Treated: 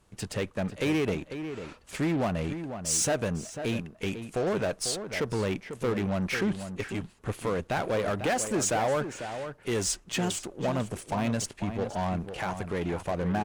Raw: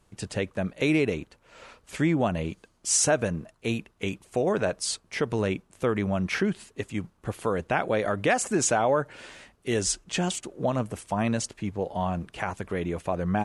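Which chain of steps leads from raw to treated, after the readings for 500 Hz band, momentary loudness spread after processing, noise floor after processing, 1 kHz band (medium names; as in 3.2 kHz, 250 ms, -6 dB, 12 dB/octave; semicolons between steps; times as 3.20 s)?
-2.5 dB, 8 LU, -56 dBFS, -2.5 dB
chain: saturation -22 dBFS, distortion -12 dB; Chebyshev shaper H 8 -23 dB, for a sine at -22 dBFS; echo from a far wall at 85 m, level -9 dB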